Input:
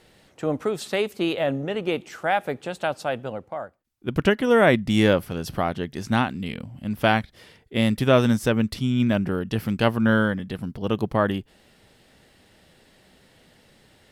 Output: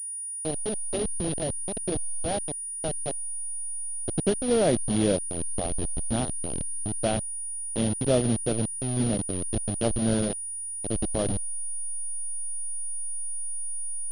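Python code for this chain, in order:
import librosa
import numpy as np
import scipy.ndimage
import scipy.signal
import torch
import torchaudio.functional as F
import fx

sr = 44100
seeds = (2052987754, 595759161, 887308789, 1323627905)

y = fx.delta_hold(x, sr, step_db=-17.5)
y = fx.band_shelf(y, sr, hz=1500.0, db=-12.5, octaves=1.7)
y = fx.pwm(y, sr, carrier_hz=9600.0)
y = y * 10.0 ** (-4.0 / 20.0)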